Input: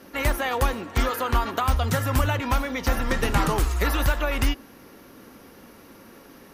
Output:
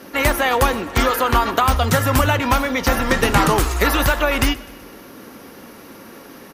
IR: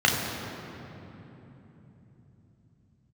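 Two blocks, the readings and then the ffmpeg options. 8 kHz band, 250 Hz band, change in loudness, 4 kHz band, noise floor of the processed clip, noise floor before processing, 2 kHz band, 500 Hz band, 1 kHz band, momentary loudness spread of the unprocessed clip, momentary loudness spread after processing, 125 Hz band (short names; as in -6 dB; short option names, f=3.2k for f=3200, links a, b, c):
+8.5 dB, +7.5 dB, +7.0 dB, +8.5 dB, -41 dBFS, -49 dBFS, +8.5 dB, +8.5 dB, +8.5 dB, 3 LU, 3 LU, +4.0 dB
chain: -filter_complex "[0:a]lowshelf=f=77:g=-10,asplit=2[a][b];[b]aecho=0:1:127|254|381|508:0.0841|0.0454|0.0245|0.0132[c];[a][c]amix=inputs=2:normalize=0,volume=8.5dB"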